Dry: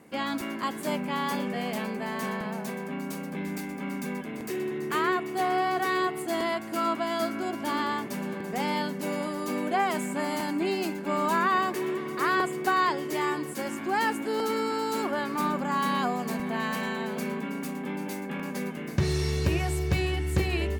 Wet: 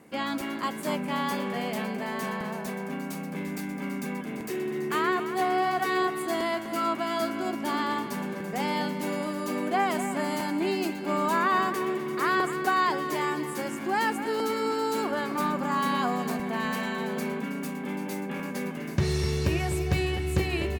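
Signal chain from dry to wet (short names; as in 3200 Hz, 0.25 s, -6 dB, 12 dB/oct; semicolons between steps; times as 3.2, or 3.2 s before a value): outdoor echo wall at 43 m, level -10 dB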